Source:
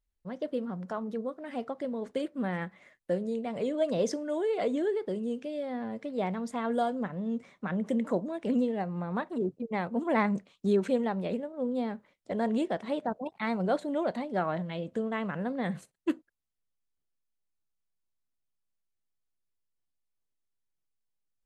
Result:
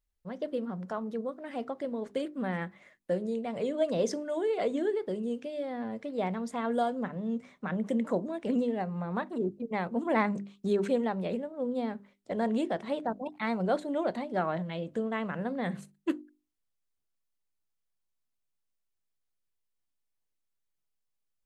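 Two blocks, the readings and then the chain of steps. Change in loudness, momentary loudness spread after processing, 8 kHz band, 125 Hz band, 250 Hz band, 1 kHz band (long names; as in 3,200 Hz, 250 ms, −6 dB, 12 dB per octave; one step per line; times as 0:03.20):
−0.5 dB, 7 LU, can't be measured, −1.0 dB, −1.0 dB, 0.0 dB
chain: mains-hum notches 50/100/150/200/250/300/350/400 Hz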